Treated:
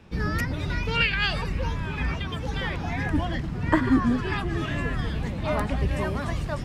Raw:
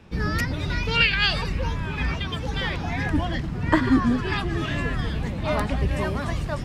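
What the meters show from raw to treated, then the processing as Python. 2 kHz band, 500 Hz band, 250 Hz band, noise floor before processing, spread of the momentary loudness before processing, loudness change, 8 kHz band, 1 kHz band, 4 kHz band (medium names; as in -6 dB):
-3.0 dB, -1.5 dB, -1.5 dB, -30 dBFS, 8 LU, -2.0 dB, no reading, -1.5 dB, -5.0 dB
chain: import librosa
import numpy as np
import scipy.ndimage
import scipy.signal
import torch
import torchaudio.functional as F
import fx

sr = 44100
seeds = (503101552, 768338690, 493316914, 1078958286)

y = fx.dynamic_eq(x, sr, hz=4300.0, q=1.1, threshold_db=-40.0, ratio=4.0, max_db=-6)
y = y * librosa.db_to_amplitude(-1.5)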